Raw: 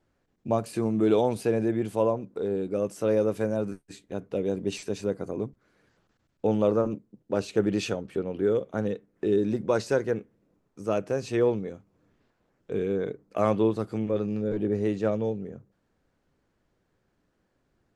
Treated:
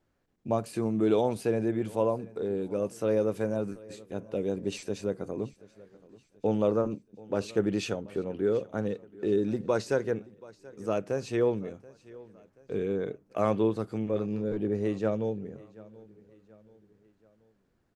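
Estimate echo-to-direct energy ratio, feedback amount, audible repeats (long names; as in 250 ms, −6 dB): −20.5 dB, 46%, 3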